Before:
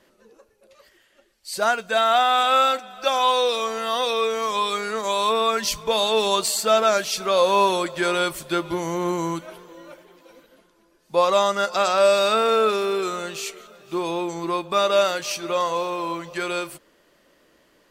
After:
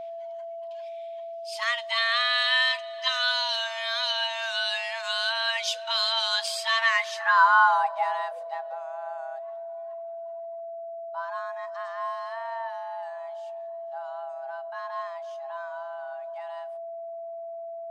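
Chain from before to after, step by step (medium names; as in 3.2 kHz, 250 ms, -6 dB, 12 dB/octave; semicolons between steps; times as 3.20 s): frequency shift +470 Hz; band-pass sweep 3.1 kHz -> 240 Hz, 6.66–8.85 s; whistle 670 Hz -38 dBFS; trim +3.5 dB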